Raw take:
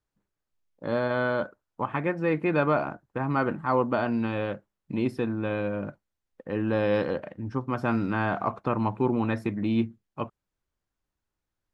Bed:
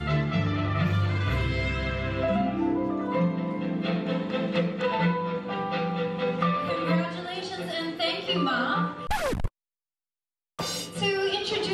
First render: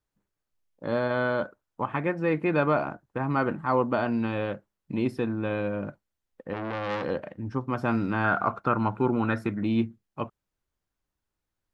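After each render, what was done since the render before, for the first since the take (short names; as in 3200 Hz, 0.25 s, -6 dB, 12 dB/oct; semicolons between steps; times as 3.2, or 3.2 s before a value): 6.53–7.04 core saturation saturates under 1800 Hz; 8.24–9.63 bell 1400 Hz +14.5 dB 0.24 oct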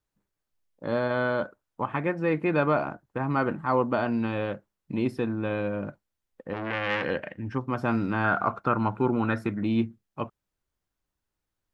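6.66–7.58 band shelf 2200 Hz +9 dB 1.2 oct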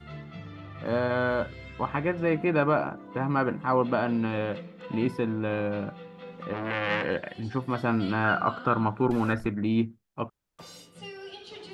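add bed -16 dB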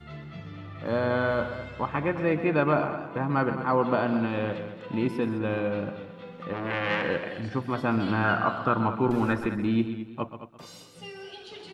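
echo 0.13 s -11 dB; warbling echo 0.213 s, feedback 32%, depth 66 cents, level -12 dB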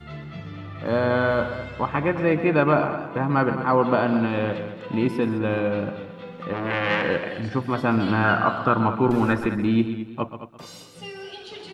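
gain +4.5 dB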